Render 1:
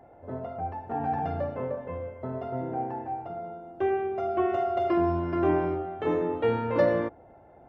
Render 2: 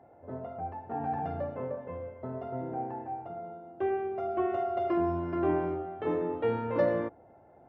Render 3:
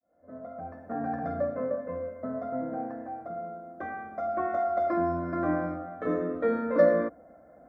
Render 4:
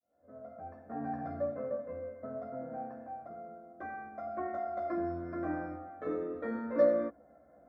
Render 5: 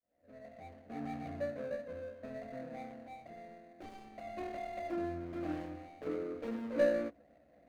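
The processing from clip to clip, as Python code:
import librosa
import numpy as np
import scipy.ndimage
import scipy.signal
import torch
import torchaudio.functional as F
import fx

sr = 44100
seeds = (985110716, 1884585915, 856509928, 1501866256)

y1 = scipy.signal.sosfilt(scipy.signal.butter(2, 78.0, 'highpass', fs=sr, output='sos'), x)
y1 = fx.high_shelf(y1, sr, hz=3800.0, db=-9.5)
y1 = F.gain(torch.from_numpy(y1), -3.5).numpy()
y2 = fx.fade_in_head(y1, sr, length_s=0.9)
y2 = fx.fixed_phaser(y2, sr, hz=580.0, stages=8)
y2 = F.gain(torch.from_numpy(y2), 6.5).numpy()
y3 = fx.doubler(y2, sr, ms=14.0, db=-2.5)
y3 = F.gain(torch.from_numpy(y3), -8.5).numpy()
y4 = scipy.signal.medfilt(y3, 41)
y4 = F.gain(torch.from_numpy(y4), -1.5).numpy()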